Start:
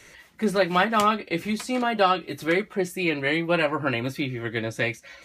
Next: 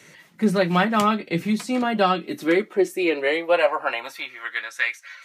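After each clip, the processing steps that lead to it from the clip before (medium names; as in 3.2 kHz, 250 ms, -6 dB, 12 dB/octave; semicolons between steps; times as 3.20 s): high-pass sweep 160 Hz -> 1.4 kHz, 1.91–4.66 s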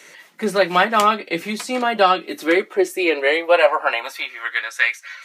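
high-pass 400 Hz 12 dB/octave; trim +5.5 dB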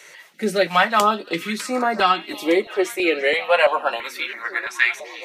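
repeats whose band climbs or falls 344 ms, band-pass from 3.6 kHz, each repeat -0.7 oct, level -10 dB; step-sequenced notch 3 Hz 240–3100 Hz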